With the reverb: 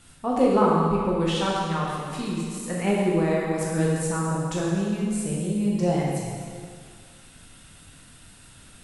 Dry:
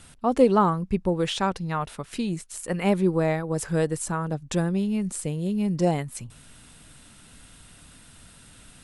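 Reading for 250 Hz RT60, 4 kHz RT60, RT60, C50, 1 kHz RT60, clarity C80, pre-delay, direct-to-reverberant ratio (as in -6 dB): 2.1 s, 1.9 s, 2.0 s, -1.0 dB, 2.0 s, 0.5 dB, 6 ms, -5.0 dB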